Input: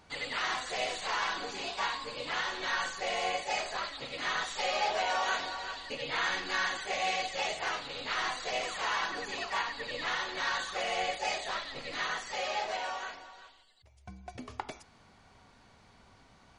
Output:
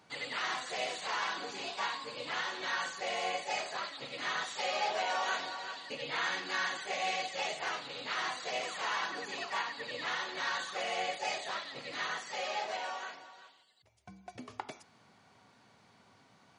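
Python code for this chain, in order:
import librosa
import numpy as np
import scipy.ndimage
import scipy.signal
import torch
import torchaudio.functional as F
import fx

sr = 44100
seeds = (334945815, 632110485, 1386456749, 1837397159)

y = scipy.signal.sosfilt(scipy.signal.butter(4, 110.0, 'highpass', fs=sr, output='sos'), x)
y = y * librosa.db_to_amplitude(-2.5)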